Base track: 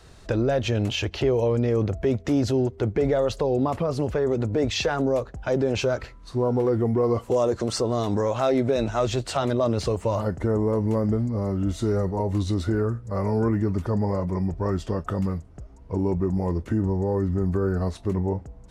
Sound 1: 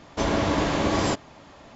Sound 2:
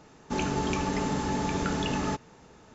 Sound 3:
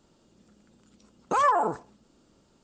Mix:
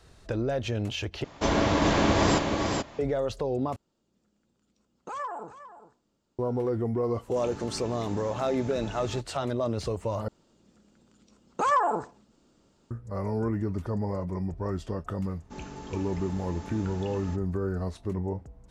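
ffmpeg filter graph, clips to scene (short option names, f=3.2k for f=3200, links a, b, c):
-filter_complex "[3:a]asplit=2[a][b];[2:a]asplit=2[c][d];[0:a]volume=-6dB[e];[1:a]aecho=1:1:430:0.631[f];[a]aecho=1:1:407:0.224[g];[e]asplit=4[h][i][j][k];[h]atrim=end=1.244[l];[f]atrim=end=1.75,asetpts=PTS-STARTPTS,volume=-0.5dB[m];[i]atrim=start=2.986:end=3.764[n];[g]atrim=end=2.63,asetpts=PTS-STARTPTS,volume=-13dB[o];[j]atrim=start=6.386:end=10.284[p];[b]atrim=end=2.63,asetpts=PTS-STARTPTS,volume=-1.5dB[q];[k]atrim=start=12.906[r];[c]atrim=end=2.74,asetpts=PTS-STARTPTS,volume=-12.5dB,afade=t=in:d=0.004:c=hsin,afade=t=out:st=2.736:d=0.004:c=hsin,adelay=7050[s];[d]atrim=end=2.74,asetpts=PTS-STARTPTS,volume=-13dB,afade=t=in:d=0.004:c=hsin,afade=t=out:st=2.736:d=0.004:c=hsin,adelay=15200[t];[l][m]acrossfade=d=0.004:c1=hsin:c2=hsin[u];[u][n]acrossfade=d=0.004:c1=hsin:c2=hsin[v];[v][o]acrossfade=d=0.004:c1=hsin:c2=hsin[w];[w][p]acrossfade=d=0.004:c1=hsin:c2=hsin[x];[x][q]acrossfade=d=0.004:c1=hsin:c2=hsin[y];[y][r]acrossfade=d=0.004:c1=hsin:c2=hsin[z];[z][s][t]amix=inputs=3:normalize=0"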